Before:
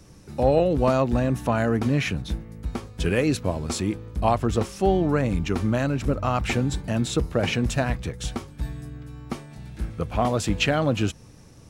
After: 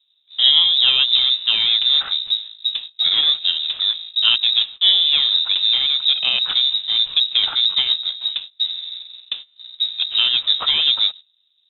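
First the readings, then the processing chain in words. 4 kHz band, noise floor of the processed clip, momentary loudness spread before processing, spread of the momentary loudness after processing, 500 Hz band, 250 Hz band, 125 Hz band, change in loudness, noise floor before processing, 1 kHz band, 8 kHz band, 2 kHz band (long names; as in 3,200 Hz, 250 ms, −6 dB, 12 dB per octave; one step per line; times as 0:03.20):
+24.5 dB, −63 dBFS, 13 LU, 10 LU, below −20 dB, below −25 dB, below −25 dB, +9.5 dB, −48 dBFS, −10.0 dB, below −40 dB, +2.5 dB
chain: running median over 25 samples
voice inversion scrambler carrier 3,800 Hz
noise gate −36 dBFS, range −21 dB
level +5.5 dB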